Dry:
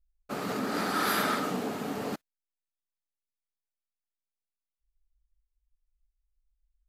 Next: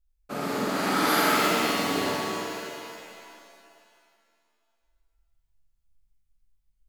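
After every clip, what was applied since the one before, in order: flutter echo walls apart 8 m, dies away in 0.99 s; shimmer reverb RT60 2.2 s, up +7 st, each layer -2 dB, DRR 3.5 dB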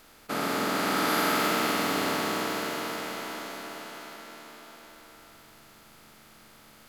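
per-bin compression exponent 0.4; gain -6 dB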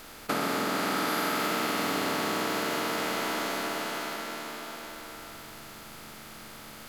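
compressor 6:1, threshold -35 dBFS, peak gain reduction 12.5 dB; gain +8.5 dB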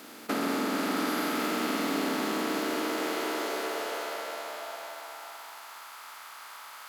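one diode to ground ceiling -29.5 dBFS; high-pass sweep 250 Hz -> 1000 Hz, 2.44–5.88; gain -1 dB

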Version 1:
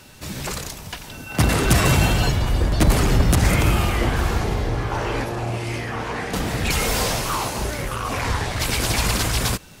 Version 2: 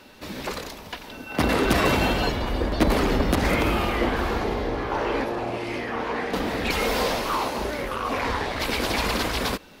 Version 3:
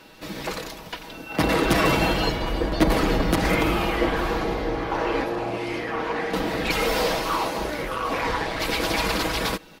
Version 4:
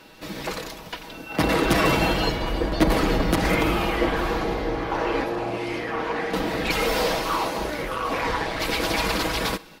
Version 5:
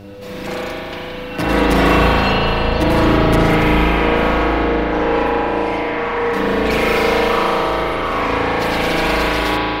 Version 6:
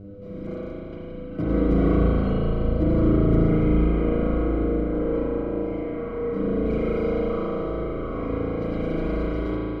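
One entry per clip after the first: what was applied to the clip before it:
ten-band EQ 125 Hz -8 dB, 250 Hz +8 dB, 500 Hz +7 dB, 1000 Hz +5 dB, 2000 Hz +4 dB, 4000 Hz +5 dB, 8000 Hz -7 dB; gain -7 dB
comb 6.2 ms, depth 48%
thinning echo 63 ms, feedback 65%, level -23 dB
buzz 100 Hz, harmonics 7, -36 dBFS -4 dB/oct; spring tank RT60 3.4 s, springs 36 ms, chirp 50 ms, DRR -8.5 dB; gain -1 dB
running mean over 50 samples; gain -3 dB

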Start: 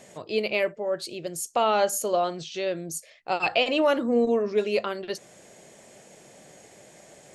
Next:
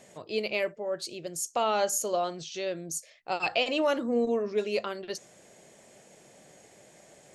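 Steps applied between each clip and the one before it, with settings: dynamic EQ 6200 Hz, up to +7 dB, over -49 dBFS, Q 1.5; gain -4.5 dB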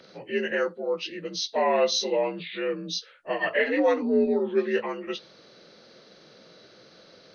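inharmonic rescaling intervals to 84%; gain +5 dB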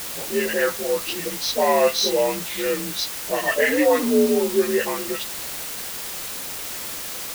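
dispersion highs, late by 64 ms, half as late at 840 Hz; requantised 6-bit, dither triangular; gain +4.5 dB

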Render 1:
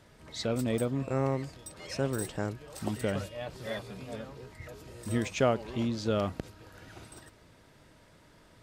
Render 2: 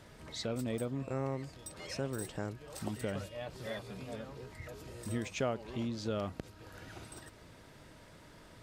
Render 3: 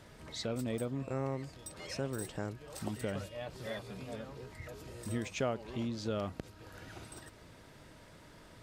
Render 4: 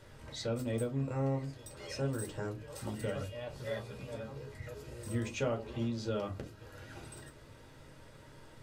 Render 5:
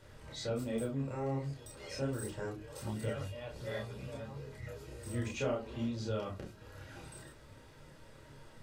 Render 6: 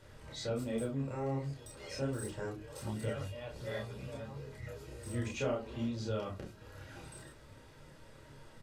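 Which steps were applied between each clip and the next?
compressor 1.5:1, threshold -53 dBFS, peak gain reduction 11.5 dB; gain +3 dB
nothing audible
reverb RT60 0.25 s, pre-delay 4 ms, DRR 1 dB; gain -4 dB
chorus voices 2, 0.66 Hz, delay 30 ms, depth 3 ms; gain +2 dB
downsampling 32000 Hz

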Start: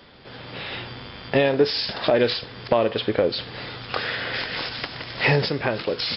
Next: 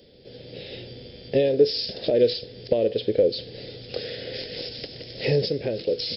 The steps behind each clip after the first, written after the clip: EQ curve 290 Hz 0 dB, 500 Hz +7 dB, 1100 Hz -27 dB, 1800 Hz -12 dB, 6000 Hz +5 dB; gain -3.5 dB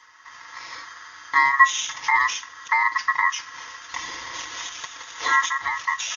comb 5 ms, depth 82%; ring modulator 1500 Hz; gain +2 dB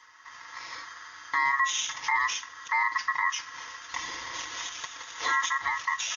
limiter -13 dBFS, peak gain reduction 10.5 dB; gain -3 dB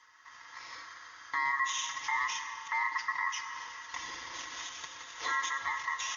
reverb RT60 4.1 s, pre-delay 79 ms, DRR 7.5 dB; gain -6 dB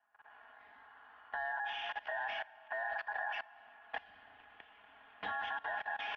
level quantiser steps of 20 dB; mistuned SSB -250 Hz 320–3400 Hz; low-pass opened by the level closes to 2200 Hz, open at -39.5 dBFS; gain +2 dB

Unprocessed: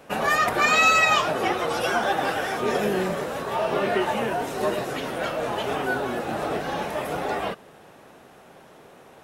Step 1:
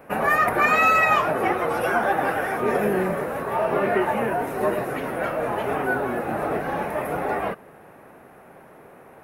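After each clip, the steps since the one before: band shelf 4900 Hz -14 dB; gain +2 dB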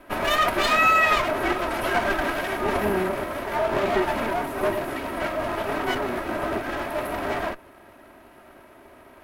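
minimum comb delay 3.1 ms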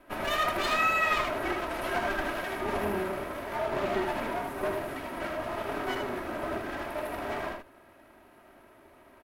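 echo 77 ms -5 dB; gain -8 dB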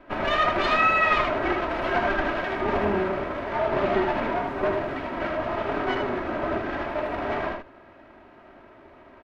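air absorption 190 m; gain +7 dB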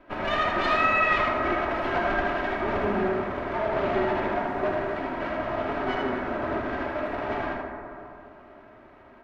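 reverb RT60 2.6 s, pre-delay 43 ms, DRR 2.5 dB; gain -3.5 dB

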